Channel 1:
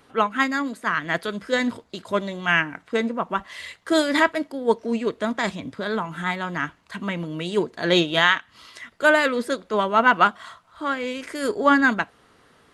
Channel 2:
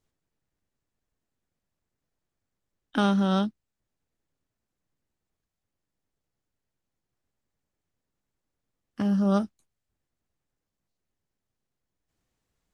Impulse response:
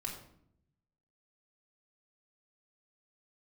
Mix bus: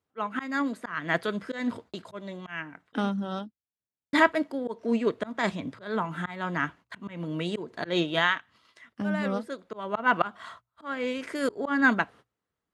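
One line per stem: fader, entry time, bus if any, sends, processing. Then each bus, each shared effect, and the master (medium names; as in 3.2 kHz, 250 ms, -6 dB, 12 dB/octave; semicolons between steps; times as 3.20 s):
-1.0 dB, 0.00 s, muted 3.10–4.13 s, no send, gate -45 dBFS, range -31 dB; slow attack 214 ms; hum notches 60/120 Hz; auto duck -11 dB, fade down 1.15 s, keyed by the second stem
-4.0 dB, 0.00 s, no send, reverb removal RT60 1.7 s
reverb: none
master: high-pass 74 Hz; treble shelf 3.6 kHz -7 dB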